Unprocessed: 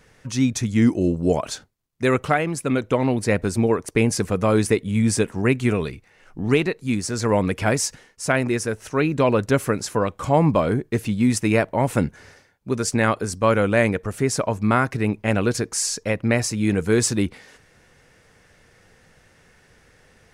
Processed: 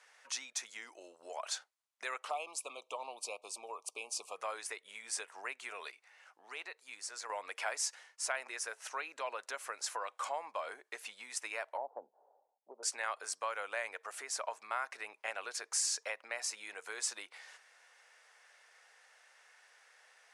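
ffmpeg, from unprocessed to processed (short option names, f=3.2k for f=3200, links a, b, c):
-filter_complex "[0:a]asettb=1/sr,asplit=3[a][b][c];[a]atrim=end=2.304[d];[b]atrim=start=2.3:end=4.36,asetpts=PTS-STARTPTS,afade=t=in:d=0.004:c=qsin,afade=t=out:st=2.056:d=0.004:c=qsin,asuperstop=centerf=1700:order=12:qfactor=1.5[e];[c]atrim=start=4.356[f];[d][e]acrossfade=d=0.004:c1=hsin:c2=qsin[g];[g][f]acrossfade=d=0.004:c1=qsin:c2=hsin,asettb=1/sr,asplit=3[h][i][j];[h]atrim=end=5.914[k];[i]atrim=start=5.91:end=7.3,asetpts=PTS-STARTPTS,afade=t=in:d=0.004:c=qsin,afade=t=out:st=1.386:d=0.004:c=qsin,acompressor=threshold=-45dB:ratio=1.5:attack=3.2:release=140:knee=1:detection=peak[l];[j]atrim=start=7.296[m];[k][l]acrossfade=d=0.004:c1=hsin:c2=qsin[n];[n][m]acrossfade=d=0.004:c1=qsin:c2=hsin,asettb=1/sr,asplit=3[o][p][q];[o]atrim=end=11.774[r];[p]atrim=start=11.77:end=12.83,asetpts=PTS-STARTPTS,afade=t=in:d=0.004:c=qsin,afade=t=out:st=1.056:d=0.004:c=qsin,asuperpass=centerf=370:order=12:qfactor=0.54[s];[q]atrim=start=12.826[t];[r][s]acrossfade=d=0.004:c1=hsin:c2=qsin[u];[u][t]acrossfade=d=0.004:c1=qsin:c2=hsin,lowpass=f=11k:w=0.5412,lowpass=f=11k:w=1.3066,acompressor=threshold=-24dB:ratio=6,highpass=f=700:w=0.5412,highpass=f=700:w=1.3066,volume=-5.5dB"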